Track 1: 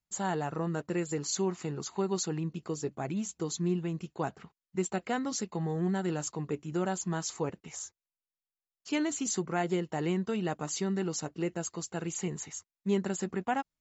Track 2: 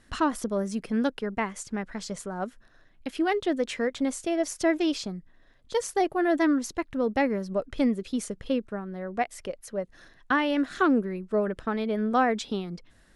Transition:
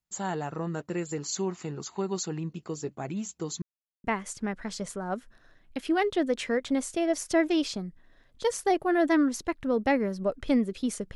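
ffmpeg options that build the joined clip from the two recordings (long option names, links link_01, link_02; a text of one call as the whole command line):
ffmpeg -i cue0.wav -i cue1.wav -filter_complex "[0:a]apad=whole_dur=11.15,atrim=end=11.15,asplit=2[link_01][link_02];[link_01]atrim=end=3.62,asetpts=PTS-STARTPTS,afade=type=out:start_time=3.616:duration=0.004:curve=hsin[link_03];[link_02]atrim=start=3.62:end=4.04,asetpts=PTS-STARTPTS,volume=0[link_04];[1:a]atrim=start=1.34:end=8.45,asetpts=PTS-STARTPTS,afade=type=in:duration=0.004:curve=hsin[link_05];[link_03][link_04][link_05]concat=n=3:v=0:a=1" out.wav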